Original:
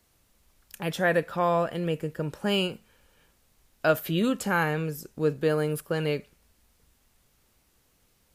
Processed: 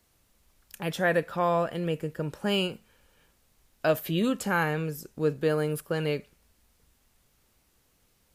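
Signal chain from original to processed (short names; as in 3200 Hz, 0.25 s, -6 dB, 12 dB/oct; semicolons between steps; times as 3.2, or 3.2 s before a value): 3.86–4.26 notch 1400 Hz, Q 7.7; gain -1 dB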